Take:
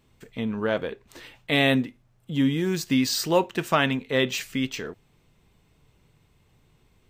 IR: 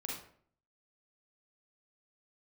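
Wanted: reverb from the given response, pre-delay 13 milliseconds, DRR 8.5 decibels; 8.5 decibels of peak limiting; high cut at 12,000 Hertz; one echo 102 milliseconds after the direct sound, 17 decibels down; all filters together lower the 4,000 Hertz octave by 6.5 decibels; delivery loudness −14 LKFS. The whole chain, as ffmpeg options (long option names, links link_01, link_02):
-filter_complex "[0:a]lowpass=12000,equalizer=frequency=4000:width_type=o:gain=-8.5,alimiter=limit=-17.5dB:level=0:latency=1,aecho=1:1:102:0.141,asplit=2[link_01][link_02];[1:a]atrim=start_sample=2205,adelay=13[link_03];[link_02][link_03]afir=irnorm=-1:irlink=0,volume=-9dB[link_04];[link_01][link_04]amix=inputs=2:normalize=0,volume=14dB"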